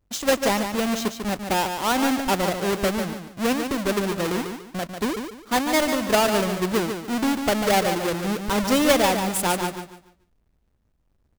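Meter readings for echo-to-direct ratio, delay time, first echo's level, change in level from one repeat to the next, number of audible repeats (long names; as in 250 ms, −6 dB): −6.5 dB, 145 ms, −7.0 dB, −11.0 dB, 3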